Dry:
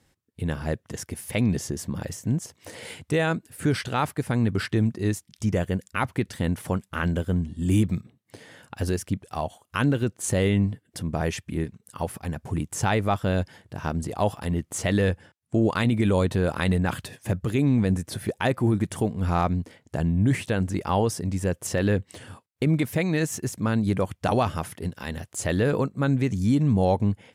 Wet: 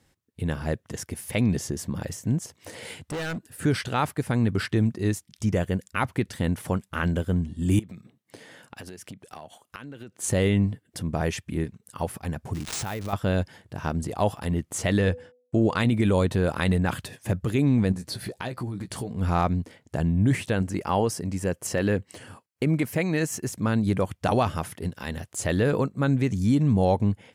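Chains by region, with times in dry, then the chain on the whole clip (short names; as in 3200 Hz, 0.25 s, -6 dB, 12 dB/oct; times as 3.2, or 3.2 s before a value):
2.99–3.65 bell 1700 Hz +2.5 dB 0.42 oct + notch 2200 Hz + overloaded stage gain 28.5 dB
7.79–10.22 HPF 140 Hz + dynamic EQ 2400 Hz, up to +4 dB, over -45 dBFS, Q 0.81 + compressor 16:1, threshold -36 dBFS
12.53–13.13 switching spikes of -25.5 dBFS + compressor 5:1, threshold -28 dBFS + careless resampling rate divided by 3×, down none, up hold
14.99–15.8 expander -51 dBFS + LPF 9100 Hz + de-hum 247.6 Hz, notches 3
17.92–19.11 bell 4400 Hz +12 dB 0.26 oct + compressor 4:1, threshold -30 dBFS + doubler 16 ms -7 dB
20.62–23.49 low shelf 70 Hz -11 dB + notch 3600 Hz, Q 8.5
whole clip: dry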